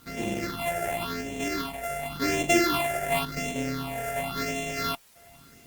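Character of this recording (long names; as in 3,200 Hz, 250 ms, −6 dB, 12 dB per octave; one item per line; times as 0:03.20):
a buzz of ramps at a fixed pitch in blocks of 64 samples
phaser sweep stages 6, 0.92 Hz, lowest notch 280–1,300 Hz
a quantiser's noise floor 10 bits, dither triangular
Opus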